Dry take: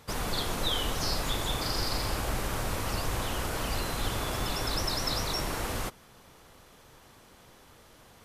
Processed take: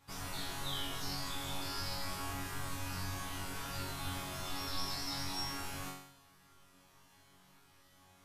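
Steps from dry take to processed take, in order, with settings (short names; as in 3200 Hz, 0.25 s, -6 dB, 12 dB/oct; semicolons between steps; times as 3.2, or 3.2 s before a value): bell 490 Hz -13 dB 0.4 oct; resonator bank F#2 fifth, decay 0.72 s; gain +7.5 dB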